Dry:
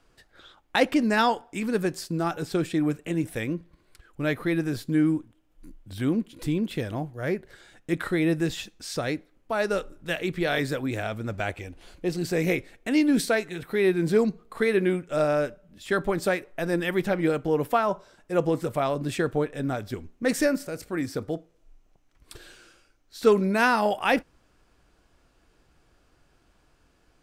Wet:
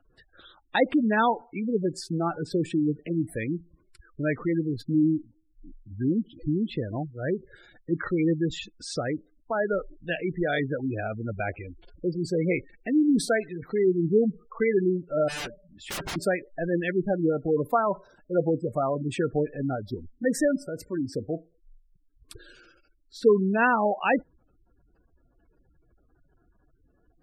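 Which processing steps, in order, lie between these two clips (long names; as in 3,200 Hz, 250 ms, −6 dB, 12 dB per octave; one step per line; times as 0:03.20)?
0:15.28–0:16.16: wrap-around overflow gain 27 dB
gate on every frequency bin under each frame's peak −15 dB strong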